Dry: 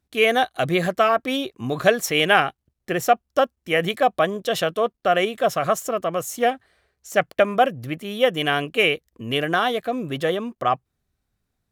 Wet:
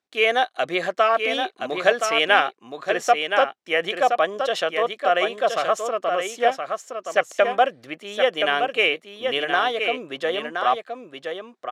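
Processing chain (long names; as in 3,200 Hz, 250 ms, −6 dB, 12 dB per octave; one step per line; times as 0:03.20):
band-pass filter 430–6,400 Hz
single-tap delay 1,021 ms −6 dB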